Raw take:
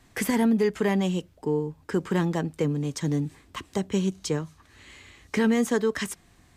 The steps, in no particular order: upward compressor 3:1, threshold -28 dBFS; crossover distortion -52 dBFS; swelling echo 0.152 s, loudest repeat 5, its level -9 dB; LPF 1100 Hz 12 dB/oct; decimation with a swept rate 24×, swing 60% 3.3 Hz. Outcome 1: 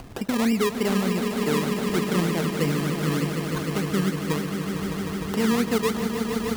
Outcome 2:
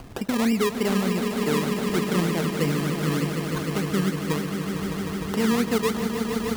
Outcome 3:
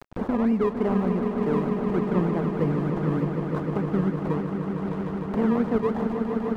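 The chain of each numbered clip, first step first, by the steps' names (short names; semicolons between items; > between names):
LPF > decimation with a swept rate > upward compressor > swelling echo > crossover distortion; LPF > upward compressor > decimation with a swept rate > swelling echo > crossover distortion; decimation with a swept rate > LPF > crossover distortion > upward compressor > swelling echo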